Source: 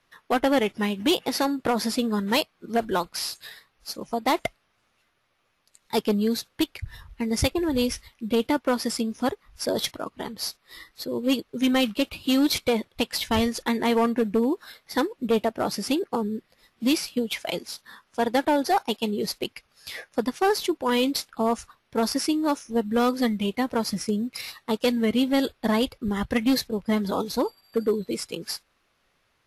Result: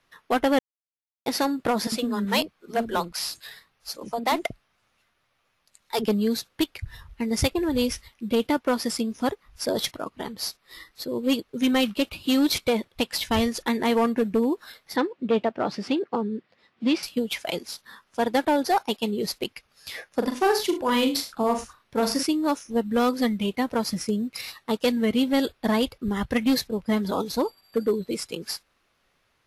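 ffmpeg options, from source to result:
-filter_complex "[0:a]asettb=1/sr,asplit=3[s0][s1][s2];[s0]atrim=end=1.874[s3];[s1]atrim=start=1.87:end=6.08,asetpts=PTS-STARTPTS,afade=t=in:d=0.004:c=qsin,afade=t=out:st=4.206:d=0.004:c=qsin,acrossover=split=350[s4][s5];[s4]adelay=50[s6];[s6][s5]amix=inputs=2:normalize=0,atrim=end_sample=185661[s7];[s2]atrim=start=6.076[s8];[s3][s7]acrossfade=d=0.004:c1=hsin:c2=qsin[s9];[s9][s8]acrossfade=d=0.004:c1=qsin:c2=hsin,asettb=1/sr,asplit=3[s10][s11][s12];[s10]atrim=end=14.964[s13];[s11]atrim=start=14.96:end=17.03,asetpts=PTS-STARTPTS,afade=t=in:d=0.004:c=qsin,afade=t=out:st=2.066:d=0.004:c=qsin,highpass=120,lowpass=3600[s14];[s12]atrim=start=17.026[s15];[s13][s14]acrossfade=d=0.004:c1=hsin:c2=qsin[s16];[s16][s15]acrossfade=d=0.004:c1=qsin:c2=hsin,asettb=1/sr,asplit=3[s17][s18][s19];[s17]atrim=end=20.084[s20];[s18]atrim=start=20.08:end=22.23,asetpts=PTS-STARTPTS,afade=t=in:d=0.004:c=qsin,afade=t=out:st=2.146:d=0.004:c=qsin,aecho=1:1:42|75|103:0.447|0.2|0.126,atrim=end_sample=94815[s21];[s19]atrim=start=22.226[s22];[s20][s21]acrossfade=d=0.004:c1=hsin:c2=qsin[s23];[s23][s22]acrossfade=d=0.004:c1=qsin:c2=hsin,asplit=3[s24][s25][s26];[s24]atrim=end=0.59,asetpts=PTS-STARTPTS,afade=t=out:st=0.586:d=0.004:c=hsin[s27];[s25]atrim=start=0.59:end=1.26,asetpts=PTS-STARTPTS,volume=0[s28];[s26]atrim=start=1.26,asetpts=PTS-STARTPTS,afade=t=in:d=0.004:c=hsin[s29];[s27][s28][s29]concat=n=3:v=0:a=1"

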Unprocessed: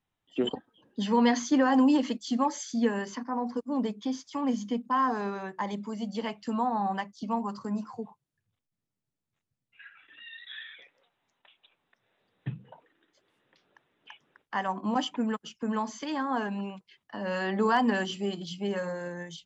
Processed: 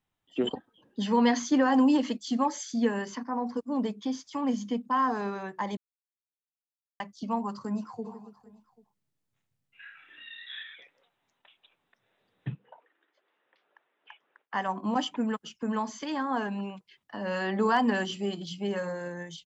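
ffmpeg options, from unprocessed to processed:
-filter_complex "[0:a]asplit=3[s0][s1][s2];[s0]afade=t=out:st=8.04:d=0.02[s3];[s1]aecho=1:1:30|78|154.8|277.7|474.3|788.9:0.631|0.398|0.251|0.158|0.1|0.0631,afade=t=in:st=8.04:d=0.02,afade=t=out:st=10.61:d=0.02[s4];[s2]afade=t=in:st=10.61:d=0.02[s5];[s3][s4][s5]amix=inputs=3:normalize=0,asettb=1/sr,asplit=3[s6][s7][s8];[s6]atrim=end=12.554[s9];[s7]atrim=start=12.55:end=14.54,asetpts=PTS-STARTPTS,afade=t=in:d=0.004:c=qsin,afade=t=out:st=1.986:d=0.004:c=qsin,highpass=510,lowpass=2600[s10];[s8]atrim=start=14.536[s11];[s9][s10]acrossfade=d=0.004:c1=hsin:c2=qsin[s12];[s12][s11]acrossfade=d=0.004:c1=qsin:c2=hsin,asplit=3[s13][s14][s15];[s13]atrim=end=5.77,asetpts=PTS-STARTPTS,afade=t=out:st=5.766:d=0.004:c=hsin[s16];[s14]atrim=start=5.77:end=7,asetpts=PTS-STARTPTS,volume=0[s17];[s15]atrim=start=7,asetpts=PTS-STARTPTS,afade=t=in:d=0.004:c=hsin[s18];[s16][s17][s18]concat=n=3:v=0:a=1"

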